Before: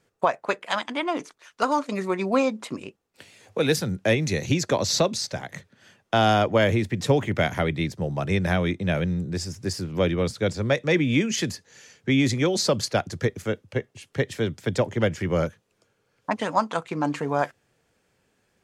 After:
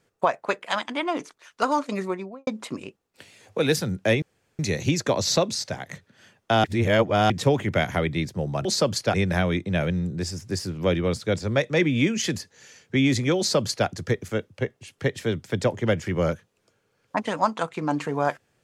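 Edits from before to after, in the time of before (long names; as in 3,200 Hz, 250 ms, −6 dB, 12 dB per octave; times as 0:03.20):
0:01.94–0:02.47: fade out and dull
0:04.22: splice in room tone 0.37 s
0:06.27–0:06.93: reverse
0:12.52–0:13.01: duplicate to 0:08.28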